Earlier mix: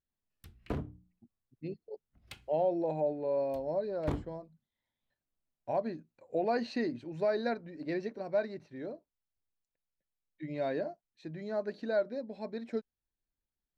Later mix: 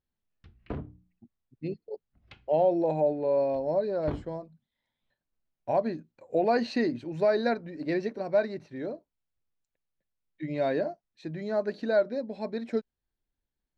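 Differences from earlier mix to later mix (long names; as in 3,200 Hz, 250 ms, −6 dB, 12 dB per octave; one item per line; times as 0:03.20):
speech +6.0 dB
background: add Gaussian smoothing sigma 2.1 samples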